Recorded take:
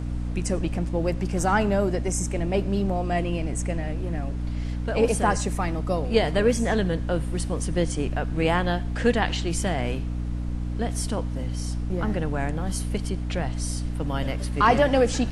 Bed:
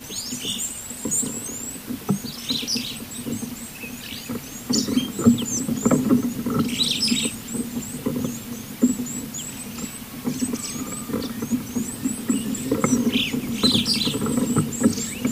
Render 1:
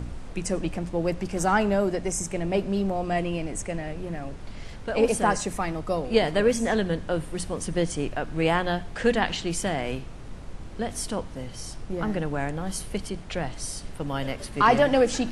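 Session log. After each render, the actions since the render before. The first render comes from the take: de-hum 60 Hz, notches 5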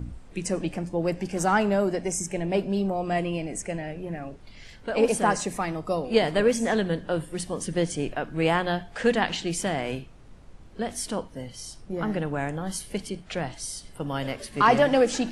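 noise print and reduce 10 dB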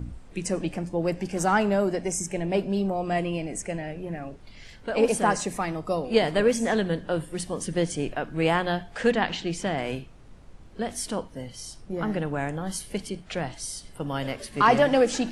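9.11–9.78 s: distance through air 73 m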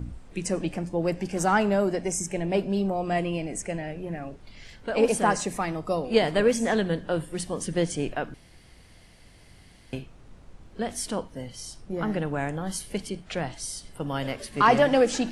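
8.34–9.93 s: room tone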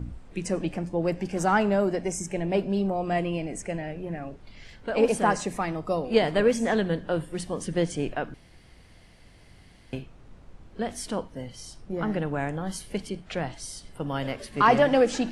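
treble shelf 5.4 kHz -6.5 dB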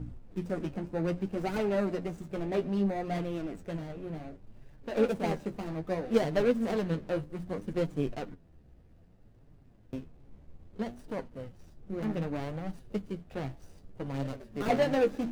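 median filter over 41 samples; flange 0.63 Hz, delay 6.4 ms, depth 8.7 ms, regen +33%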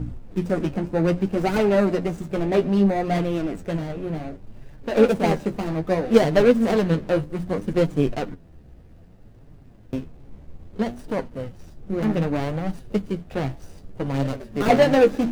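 trim +10.5 dB

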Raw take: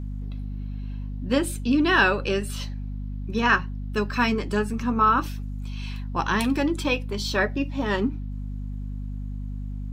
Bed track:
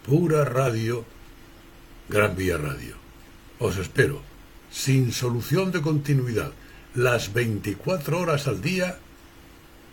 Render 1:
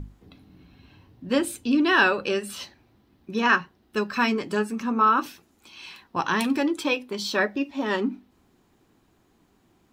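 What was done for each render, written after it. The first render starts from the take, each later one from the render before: hum notches 50/100/150/200/250 Hz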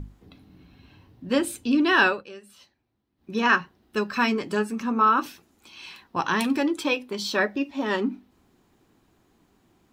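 2.07–3.33 s: dip -16.5 dB, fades 0.17 s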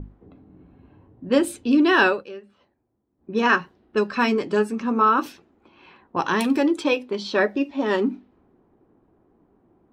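level-controlled noise filter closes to 1.1 kHz, open at -21 dBFS; peaking EQ 440 Hz +6 dB 1.6 oct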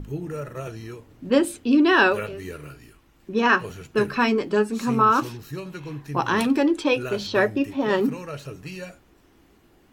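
add bed track -11.5 dB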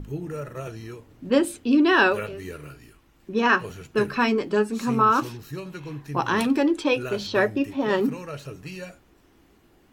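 trim -1 dB

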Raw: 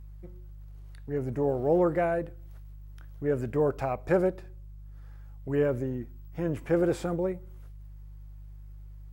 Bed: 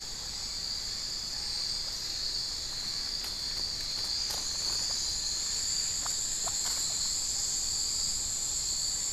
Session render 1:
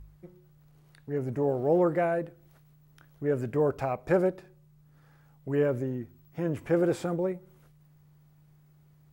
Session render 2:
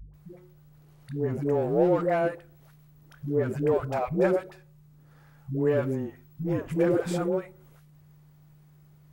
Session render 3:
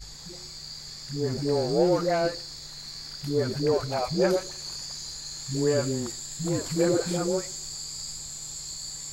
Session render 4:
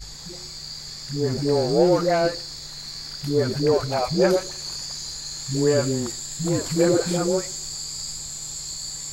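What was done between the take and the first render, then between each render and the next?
de-hum 50 Hz, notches 2
in parallel at -5 dB: saturation -30.5 dBFS, distortion -7 dB; on the sum: phase dispersion highs, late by 140 ms, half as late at 380 Hz
add bed -5.5 dB
trim +4.5 dB

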